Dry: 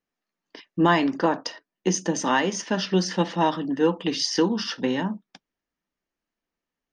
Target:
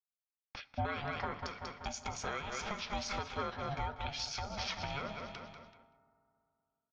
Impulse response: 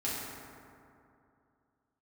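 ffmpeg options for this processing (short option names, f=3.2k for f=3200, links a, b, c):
-filter_complex "[0:a]highpass=110,lowpass=4.2k,equalizer=f=210:t=o:w=1.9:g=-14,aecho=1:1:191|382|573|764|955:0.299|0.137|0.0632|0.0291|0.0134,acompressor=threshold=-32dB:ratio=3,lowshelf=f=150:g=6.5,aeval=exprs='val(0)*sin(2*PI*420*n/s)':c=same,agate=range=-33dB:threshold=-59dB:ratio=3:detection=peak,asplit=2[a][b];[1:a]atrim=start_sample=2205,highshelf=f=3.7k:g=7[c];[b][c]afir=irnorm=-1:irlink=0,volume=-25.5dB[d];[a][d]amix=inputs=2:normalize=0,alimiter=level_in=4.5dB:limit=-24dB:level=0:latency=1:release=478,volume=-4.5dB,volume=3dB"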